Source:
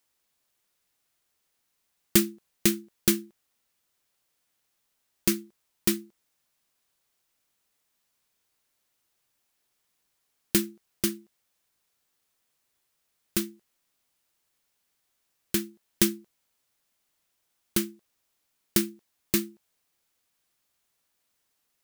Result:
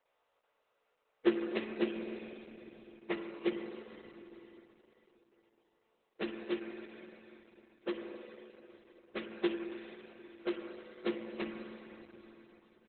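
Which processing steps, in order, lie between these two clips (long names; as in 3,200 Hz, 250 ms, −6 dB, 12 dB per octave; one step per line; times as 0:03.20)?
every partial snapped to a pitch grid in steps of 2 semitones
in parallel at +1 dB: downward compressor 16 to 1, threshold −24 dBFS, peak gain reduction 18.5 dB
on the sum: four-pole ladder band-pass 580 Hz, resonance 55%
time stretch by phase vocoder 0.59×
repeating echo 68 ms, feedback 56%, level −17.5 dB
on a send at −3 dB: convolution reverb RT60 3.7 s, pre-delay 44 ms
on the sum: level +14.5 dB
Opus 8 kbit/s 48,000 Hz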